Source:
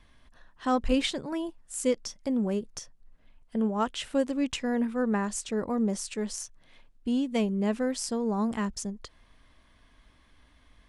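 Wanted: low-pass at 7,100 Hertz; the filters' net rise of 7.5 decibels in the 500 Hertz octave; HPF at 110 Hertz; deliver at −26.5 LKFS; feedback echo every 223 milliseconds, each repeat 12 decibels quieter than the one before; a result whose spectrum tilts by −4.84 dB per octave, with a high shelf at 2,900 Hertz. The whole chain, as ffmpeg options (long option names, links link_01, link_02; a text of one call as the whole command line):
ffmpeg -i in.wav -af "highpass=110,lowpass=7100,equalizer=frequency=500:width_type=o:gain=8.5,highshelf=frequency=2900:gain=-8.5,aecho=1:1:223|446|669:0.251|0.0628|0.0157,volume=-0.5dB" out.wav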